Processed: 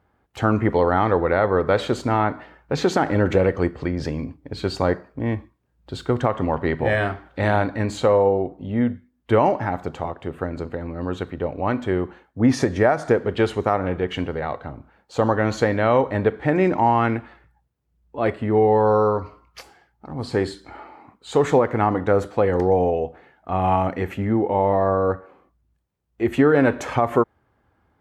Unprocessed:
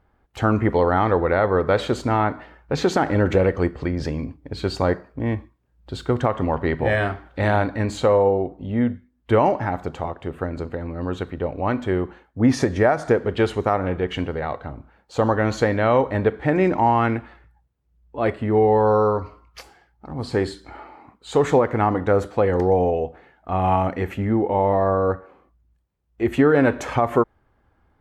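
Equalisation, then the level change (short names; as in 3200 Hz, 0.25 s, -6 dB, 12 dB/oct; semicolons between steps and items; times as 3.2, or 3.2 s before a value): HPF 73 Hz; 0.0 dB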